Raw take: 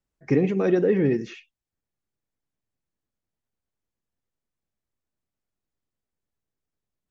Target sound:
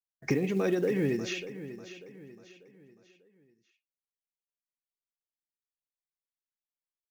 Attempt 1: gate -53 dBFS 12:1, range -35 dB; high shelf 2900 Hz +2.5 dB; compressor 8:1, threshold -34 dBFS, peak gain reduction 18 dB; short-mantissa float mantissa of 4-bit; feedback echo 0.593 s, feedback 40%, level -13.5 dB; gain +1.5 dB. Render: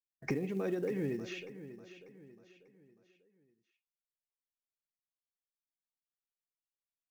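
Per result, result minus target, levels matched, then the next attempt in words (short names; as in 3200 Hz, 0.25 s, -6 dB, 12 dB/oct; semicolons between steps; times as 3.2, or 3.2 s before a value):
compressor: peak gain reduction +7 dB; 8000 Hz band -5.0 dB
gate -53 dBFS 12:1, range -35 dB; high shelf 2900 Hz +2.5 dB; compressor 8:1, threshold -26 dBFS, peak gain reduction 11 dB; short-mantissa float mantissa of 4-bit; feedback echo 0.593 s, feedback 40%, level -13.5 dB; gain +1.5 dB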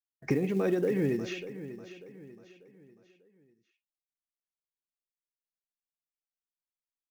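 8000 Hz band -6.5 dB
gate -53 dBFS 12:1, range -35 dB; high shelf 2900 Hz +12 dB; compressor 8:1, threshold -26 dBFS, peak gain reduction 11.5 dB; short-mantissa float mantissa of 4-bit; feedback echo 0.593 s, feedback 40%, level -13.5 dB; gain +1.5 dB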